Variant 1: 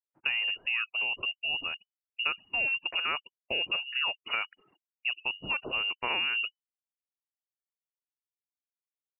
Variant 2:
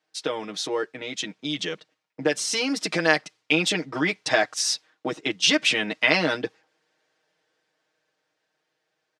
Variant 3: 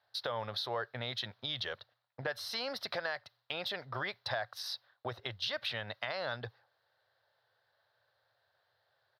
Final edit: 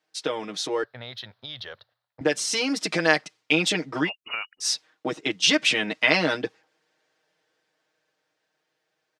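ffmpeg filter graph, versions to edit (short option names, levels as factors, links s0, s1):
-filter_complex "[1:a]asplit=3[s0][s1][s2];[s0]atrim=end=0.842[s3];[2:a]atrim=start=0.838:end=2.212[s4];[s1]atrim=start=2.208:end=4.1[s5];[0:a]atrim=start=4.04:end=4.66[s6];[s2]atrim=start=4.6[s7];[s3][s4]acrossfade=d=0.004:c1=hsin:c2=hsin[s8];[s8][s5]acrossfade=d=0.004:c1=hsin:c2=hsin[s9];[s9][s6]acrossfade=d=0.06:c1=tri:c2=tri[s10];[s10][s7]acrossfade=d=0.06:c1=tri:c2=tri"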